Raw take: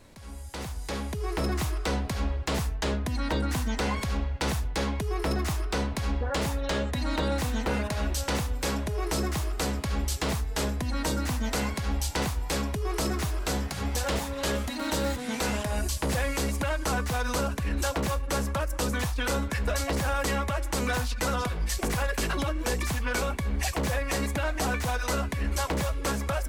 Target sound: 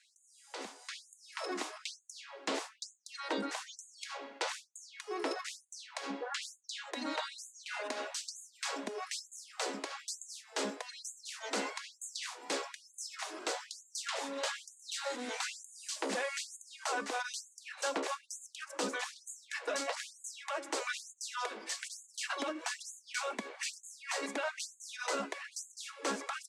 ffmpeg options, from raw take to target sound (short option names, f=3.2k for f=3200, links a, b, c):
-af "lowpass=f=8.6k:w=0.5412,lowpass=f=8.6k:w=1.3066,afftfilt=real='re*gte(b*sr/1024,210*pow(6500/210,0.5+0.5*sin(2*PI*1.1*pts/sr)))':imag='im*gte(b*sr/1024,210*pow(6500/210,0.5+0.5*sin(2*PI*1.1*pts/sr)))':win_size=1024:overlap=0.75,volume=-4.5dB"